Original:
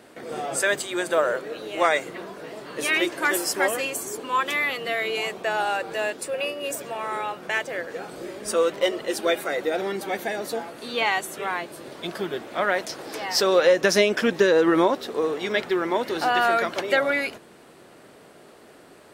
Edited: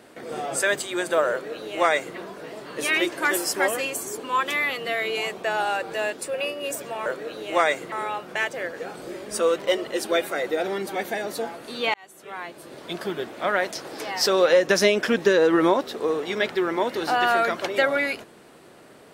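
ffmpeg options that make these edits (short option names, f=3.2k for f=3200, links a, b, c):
-filter_complex "[0:a]asplit=4[a][b][c][d];[a]atrim=end=7.062[e];[b]atrim=start=1.308:end=2.172[f];[c]atrim=start=7.058:end=11.08,asetpts=PTS-STARTPTS,afade=t=out:st=4.018:d=0.004:c=hsin[g];[d]atrim=start=11.08,asetpts=PTS-STARTPTS,afade=t=in:d=1.01[h];[e][f]acrossfade=d=0.004:c1=hsin:c2=hsin[i];[g][h]concat=n=2:v=0:a=1[j];[i][j]acrossfade=d=0.004:c1=hsin:c2=hsin"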